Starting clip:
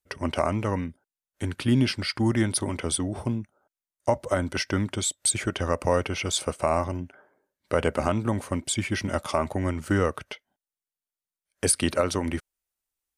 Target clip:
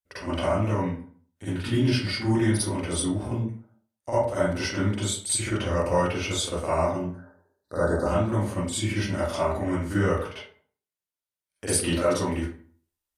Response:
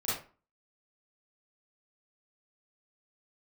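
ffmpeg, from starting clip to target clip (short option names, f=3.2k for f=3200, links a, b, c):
-filter_complex "[0:a]asettb=1/sr,asplit=3[a][b][c];[a]atrim=end=7.034[d];[b]atrim=start=7.03:end=8.06,asetpts=PTS-STARTPTS,afade=t=in:d=0.004:c=qsin,afade=t=out:st=1.026:d=0.004:c=qsin,asuperstop=centerf=2600:order=12:qfactor=1.4[e];[c]atrim=start=8.056[f];[d][e]acrossfade=d=0.004:c1=hsin:c2=qsin[g];[g][f]acrossfade=d=0.004:c1=qsin:c2=hsin[h];[1:a]atrim=start_sample=2205,asetrate=33957,aresample=44100[i];[h][i]afir=irnorm=-1:irlink=0,volume=-8dB"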